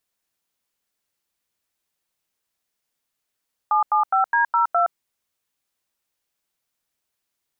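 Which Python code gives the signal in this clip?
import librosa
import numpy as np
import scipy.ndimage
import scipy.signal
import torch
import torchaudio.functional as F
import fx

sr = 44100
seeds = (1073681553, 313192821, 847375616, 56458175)

y = fx.dtmf(sr, digits='775D02', tone_ms=118, gap_ms=89, level_db=-18.0)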